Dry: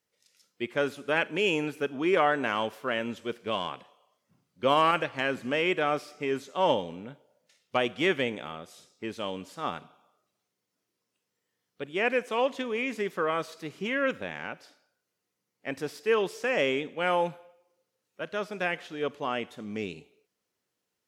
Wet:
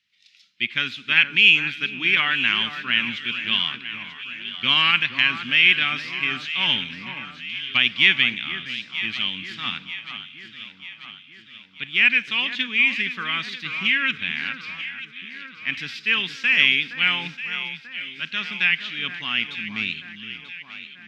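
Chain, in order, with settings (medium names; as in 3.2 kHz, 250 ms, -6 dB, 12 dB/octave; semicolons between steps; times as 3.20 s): FFT filter 230 Hz 0 dB, 520 Hz -24 dB, 2.4 kHz +15 dB, 3.7 kHz +15 dB, 9.4 kHz -13 dB; echo whose repeats swap between lows and highs 469 ms, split 1.8 kHz, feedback 73%, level -9 dB; trim +1.5 dB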